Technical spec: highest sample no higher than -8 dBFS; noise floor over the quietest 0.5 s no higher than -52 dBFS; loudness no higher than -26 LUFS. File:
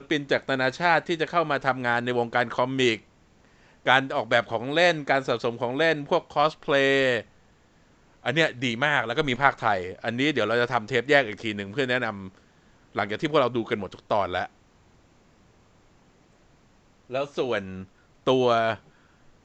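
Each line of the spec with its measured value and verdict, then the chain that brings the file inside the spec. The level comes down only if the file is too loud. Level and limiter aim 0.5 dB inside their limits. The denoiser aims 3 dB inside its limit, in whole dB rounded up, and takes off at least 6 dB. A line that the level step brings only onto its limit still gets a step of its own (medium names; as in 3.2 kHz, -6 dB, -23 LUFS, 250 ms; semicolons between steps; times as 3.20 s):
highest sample -3.0 dBFS: fail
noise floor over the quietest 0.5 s -59 dBFS: pass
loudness -24.5 LUFS: fail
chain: trim -2 dB; peak limiter -8.5 dBFS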